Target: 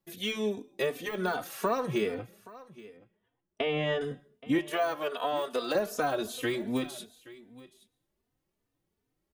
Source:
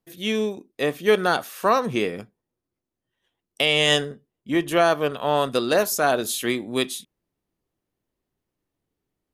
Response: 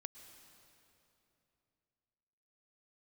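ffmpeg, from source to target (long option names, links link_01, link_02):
-filter_complex "[0:a]asettb=1/sr,asplit=3[link_01][link_02][link_03];[link_01]atrim=end=2.144[link_04];[link_02]atrim=start=2.14:end=4.01,asetpts=PTS-STARTPTS,afade=type=in:duration=0.004:curve=qsin,afade=type=out:start_time=1.866:duration=0.004:curve=qsin,lowpass=1600[link_05];[link_03]atrim=start=4.006[link_06];[link_04][link_05]acrossfade=duration=0.004:curve1=hsin:curve2=qsin[link_07];[link_07][link_06]acrossfade=duration=0.004:curve1=qsin:curve2=hsin,deesser=0.75,asettb=1/sr,asplit=3[link_08][link_09][link_10];[link_08]atrim=end=4.584[link_11];[link_09]atrim=start=4.58:end=5.75,asetpts=PTS-STARTPTS,afade=type=in:duration=0.004:curve=qsin,afade=type=out:start_time=1.166:duration=0.004:curve=qsin,highpass=420[link_12];[link_10]atrim=start=5.746[link_13];[link_11][link_12]acrossfade=duration=0.004:curve1=hsin:curve2=qsin[link_14];[link_14][link_13]acrossfade=duration=0.004:curve1=qsin:curve2=hsin,acompressor=threshold=-26dB:ratio=5,aecho=1:1:825:0.106,asplit=2[link_15][link_16];[1:a]atrim=start_sample=2205,afade=type=out:start_time=0.28:duration=0.01,atrim=end_sample=12789[link_17];[link_16][link_17]afir=irnorm=-1:irlink=0,volume=-3.5dB[link_18];[link_15][link_18]amix=inputs=2:normalize=0,asplit=2[link_19][link_20];[link_20]adelay=3.2,afreqshift=2.6[link_21];[link_19][link_21]amix=inputs=2:normalize=1"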